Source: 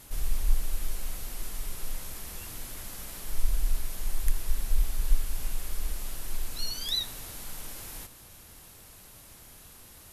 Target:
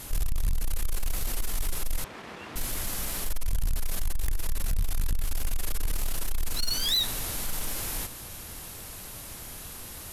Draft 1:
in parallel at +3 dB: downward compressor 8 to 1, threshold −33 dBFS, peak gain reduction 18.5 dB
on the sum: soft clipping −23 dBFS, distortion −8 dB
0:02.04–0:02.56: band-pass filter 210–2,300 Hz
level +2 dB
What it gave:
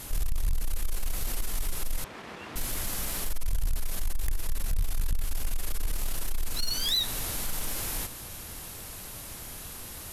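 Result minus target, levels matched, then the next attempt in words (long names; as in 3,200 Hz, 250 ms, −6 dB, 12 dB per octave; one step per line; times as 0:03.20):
downward compressor: peak gain reduction +8.5 dB
in parallel at +3 dB: downward compressor 8 to 1, threshold −23.5 dBFS, peak gain reduction 10.5 dB
on the sum: soft clipping −23 dBFS, distortion −7 dB
0:02.04–0:02.56: band-pass filter 210–2,300 Hz
level +2 dB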